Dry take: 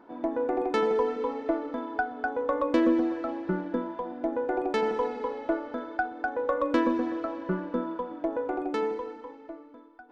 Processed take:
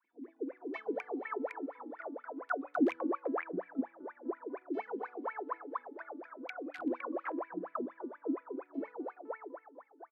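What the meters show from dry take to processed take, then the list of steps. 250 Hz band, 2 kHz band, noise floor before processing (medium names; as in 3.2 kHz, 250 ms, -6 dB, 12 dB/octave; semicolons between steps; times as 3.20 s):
-9.0 dB, -9.0 dB, -50 dBFS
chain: integer overflow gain 15 dB; wah-wah 4.2 Hz 260–2400 Hz, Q 21; three bands offset in time highs, lows, mids 40/510 ms, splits 430/2100 Hz; trim +7.5 dB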